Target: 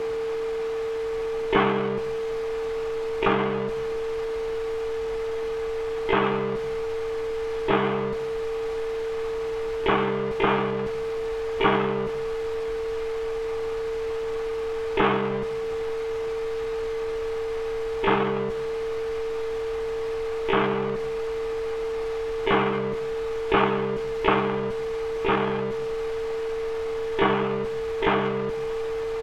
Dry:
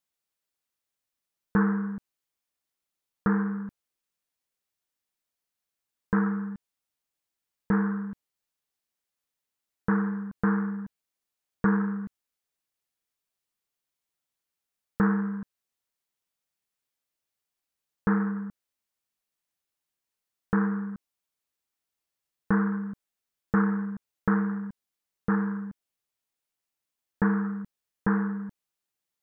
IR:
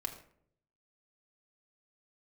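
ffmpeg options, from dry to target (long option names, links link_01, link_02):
-filter_complex "[0:a]aeval=exprs='val(0)+0.5*0.0282*sgn(val(0))':channel_layout=same,lowpass=1800,equalizer=frequency=1100:width_type=o:width=0.34:gain=4.5,asplit=3[link_01][link_02][link_03];[link_02]asetrate=29433,aresample=44100,atempo=1.49831,volume=-1dB[link_04];[link_03]asetrate=88200,aresample=44100,atempo=0.5,volume=-5dB[link_05];[link_01][link_04][link_05]amix=inputs=3:normalize=0,asplit=2[link_06][link_07];[1:a]atrim=start_sample=2205[link_08];[link_07][link_08]afir=irnorm=-1:irlink=0,volume=-2dB[link_09];[link_06][link_09]amix=inputs=2:normalize=0,aeval=exprs='val(0)+0.0562*sin(2*PI*450*n/s)':channel_layout=same,asubboost=boost=3:cutoff=83,acrossover=split=260[link_10][link_11];[link_10]acompressor=threshold=-35dB:ratio=6[link_12];[link_12][link_11]amix=inputs=2:normalize=0"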